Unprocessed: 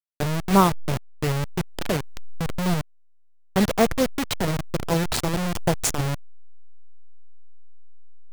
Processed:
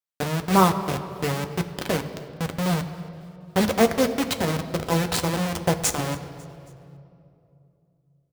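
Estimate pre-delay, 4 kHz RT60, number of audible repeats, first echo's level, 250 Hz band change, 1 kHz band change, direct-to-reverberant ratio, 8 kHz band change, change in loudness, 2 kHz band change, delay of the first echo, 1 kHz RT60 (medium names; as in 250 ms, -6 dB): 4 ms, 1.9 s, 3, -22.5 dB, 0.0 dB, +1.0 dB, 6.0 dB, +0.5 dB, 0.0 dB, +1.0 dB, 274 ms, 2.4 s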